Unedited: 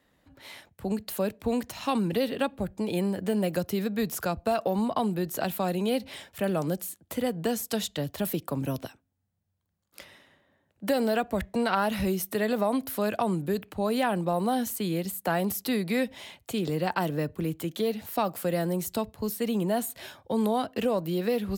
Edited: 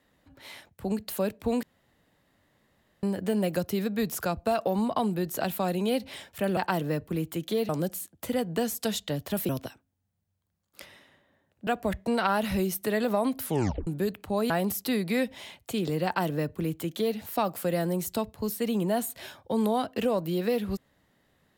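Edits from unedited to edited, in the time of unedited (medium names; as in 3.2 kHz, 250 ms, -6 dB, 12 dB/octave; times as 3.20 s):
1.63–3.03 s: room tone
8.37–8.68 s: delete
10.86–11.15 s: delete
12.91 s: tape stop 0.44 s
13.98–15.30 s: delete
16.85–17.97 s: copy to 6.57 s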